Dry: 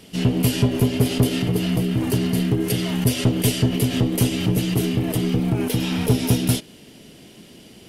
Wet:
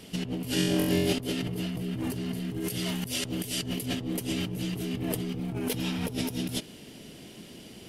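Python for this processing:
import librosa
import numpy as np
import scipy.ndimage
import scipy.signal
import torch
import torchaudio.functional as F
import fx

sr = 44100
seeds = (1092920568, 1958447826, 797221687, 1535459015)

y = fx.high_shelf(x, sr, hz=3300.0, db=7.5, at=(2.5, 3.86))
y = fx.over_compress(y, sr, threshold_db=-26.0, ratio=-1.0)
y = fx.room_flutter(y, sr, wall_m=3.8, rt60_s=1.0, at=(0.54, 1.13))
y = y * 10.0 ** (-6.5 / 20.0)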